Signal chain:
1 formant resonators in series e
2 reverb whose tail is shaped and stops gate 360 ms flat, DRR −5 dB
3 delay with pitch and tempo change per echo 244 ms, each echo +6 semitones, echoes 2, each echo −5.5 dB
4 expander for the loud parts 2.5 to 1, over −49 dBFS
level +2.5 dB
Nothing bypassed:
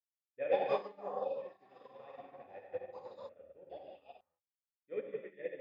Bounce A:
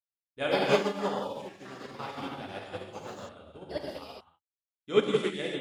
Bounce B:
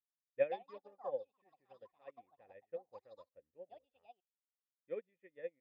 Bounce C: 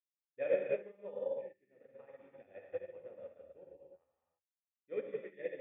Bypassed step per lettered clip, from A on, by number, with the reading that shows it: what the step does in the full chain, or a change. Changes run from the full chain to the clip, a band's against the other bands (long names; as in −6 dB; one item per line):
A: 1, 1 kHz band −11.5 dB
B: 2, change in momentary loudness spread +4 LU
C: 3, 1 kHz band −16.0 dB